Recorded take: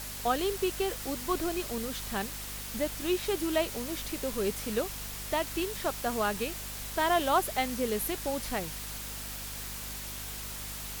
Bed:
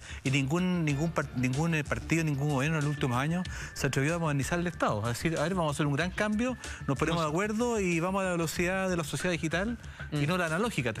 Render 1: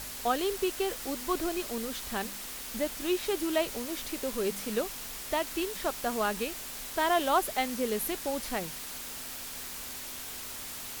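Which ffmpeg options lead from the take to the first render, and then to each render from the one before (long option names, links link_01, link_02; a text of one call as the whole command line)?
ffmpeg -i in.wav -af "bandreject=frequency=50:width_type=h:width=4,bandreject=frequency=100:width_type=h:width=4,bandreject=frequency=150:width_type=h:width=4,bandreject=frequency=200:width_type=h:width=4" out.wav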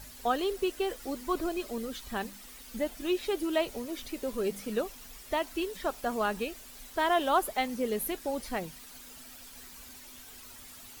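ffmpeg -i in.wav -af "afftdn=noise_reduction=11:noise_floor=-41" out.wav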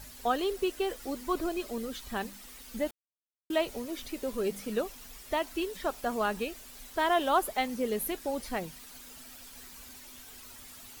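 ffmpeg -i in.wav -filter_complex "[0:a]asplit=3[link_01][link_02][link_03];[link_01]atrim=end=2.91,asetpts=PTS-STARTPTS,afade=type=out:start_time=2.906:duration=0.004:curve=hsin[link_04];[link_02]atrim=start=2.91:end=3.5,asetpts=PTS-STARTPTS,volume=0[link_05];[link_03]atrim=start=3.5,asetpts=PTS-STARTPTS,afade=type=in:duration=0.004:curve=hsin[link_06];[link_04][link_05][link_06]concat=n=3:v=0:a=1" out.wav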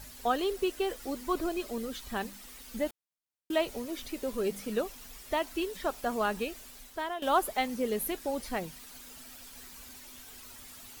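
ffmpeg -i in.wav -filter_complex "[0:a]asplit=2[link_01][link_02];[link_01]atrim=end=7.22,asetpts=PTS-STARTPTS,afade=type=out:start_time=6.65:duration=0.57:silence=0.16788[link_03];[link_02]atrim=start=7.22,asetpts=PTS-STARTPTS,afade=type=in:duration=0.004:curve=hsin:silence=0.16788[link_04];[link_03][link_04]concat=n=2:v=0:a=1" out.wav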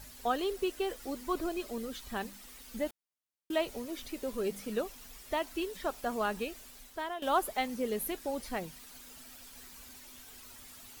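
ffmpeg -i in.wav -af "volume=-2.5dB" out.wav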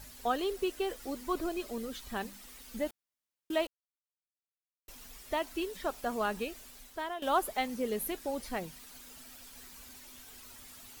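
ffmpeg -i in.wav -filter_complex "[0:a]asplit=3[link_01][link_02][link_03];[link_01]atrim=end=3.67,asetpts=PTS-STARTPTS,afade=type=out:start_time=3.666:duration=0.004:curve=hsin[link_04];[link_02]atrim=start=3.67:end=4.88,asetpts=PTS-STARTPTS,volume=0[link_05];[link_03]atrim=start=4.88,asetpts=PTS-STARTPTS,afade=type=in:duration=0.004:curve=hsin[link_06];[link_04][link_05][link_06]concat=n=3:v=0:a=1" out.wav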